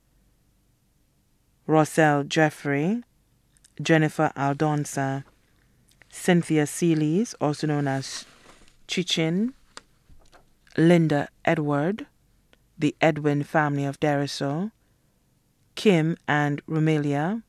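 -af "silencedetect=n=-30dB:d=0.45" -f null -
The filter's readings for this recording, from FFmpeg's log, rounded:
silence_start: 0.00
silence_end: 1.69 | silence_duration: 1.69
silence_start: 2.99
silence_end: 3.80 | silence_duration: 0.81
silence_start: 5.20
silence_end: 6.17 | silence_duration: 0.97
silence_start: 8.20
silence_end: 8.90 | silence_duration: 0.70
silence_start: 9.78
silence_end: 10.76 | silence_duration: 0.98
silence_start: 12.03
silence_end: 12.81 | silence_duration: 0.78
silence_start: 14.67
silence_end: 15.77 | silence_duration: 1.10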